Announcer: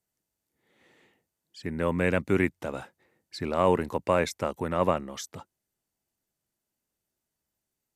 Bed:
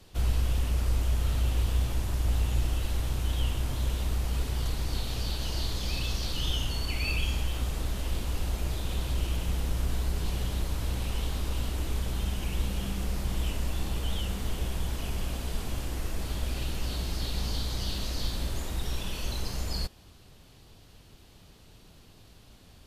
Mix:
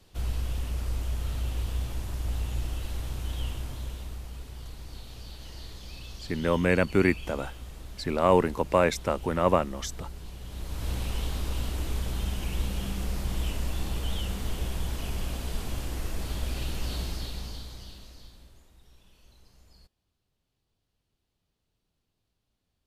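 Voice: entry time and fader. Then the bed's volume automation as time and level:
4.65 s, +2.0 dB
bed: 0:03.50 −4 dB
0:04.39 −11.5 dB
0:10.40 −11.5 dB
0:10.90 0 dB
0:17.02 0 dB
0:18.72 −25.5 dB

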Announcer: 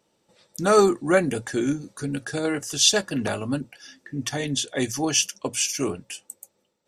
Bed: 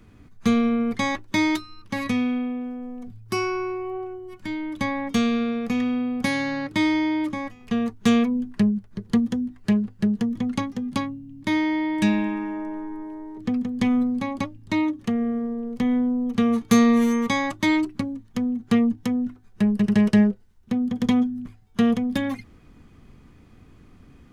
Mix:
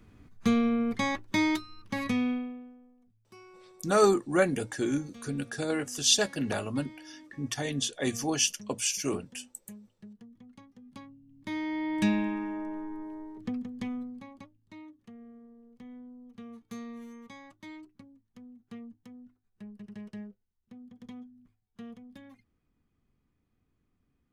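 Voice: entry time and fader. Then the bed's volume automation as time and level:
3.25 s, −5.0 dB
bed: 0:02.31 −5 dB
0:02.98 −27.5 dB
0:10.59 −27.5 dB
0:11.97 −5.5 dB
0:13.22 −5.5 dB
0:14.69 −25.5 dB

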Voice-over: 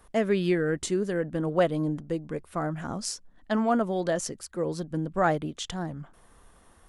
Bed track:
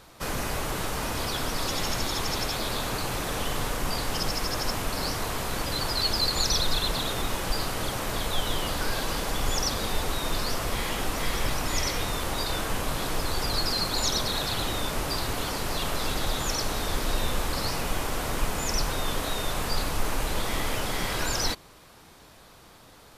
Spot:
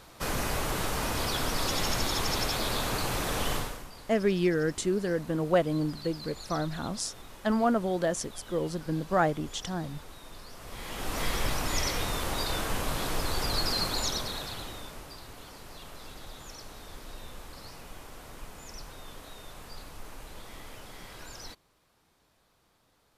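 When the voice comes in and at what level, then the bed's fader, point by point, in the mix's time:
3.95 s, −1.0 dB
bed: 0:03.55 −0.5 dB
0:03.91 −19 dB
0:10.51 −19 dB
0:11.19 −2 dB
0:13.85 −2 dB
0:15.16 −17 dB

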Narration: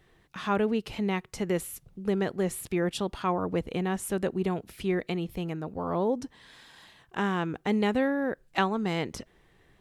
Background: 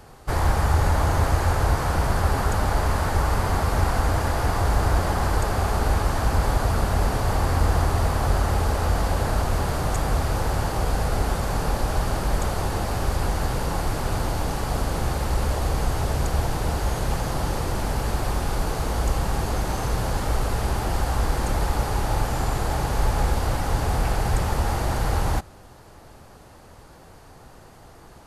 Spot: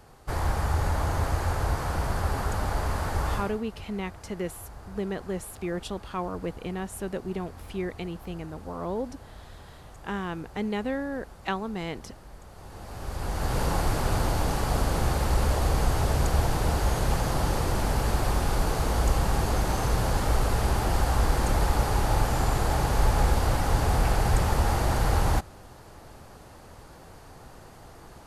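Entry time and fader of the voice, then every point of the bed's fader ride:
2.90 s, −4.0 dB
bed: 0:03.35 −6 dB
0:03.62 −23.5 dB
0:12.46 −23.5 dB
0:13.60 −0.5 dB

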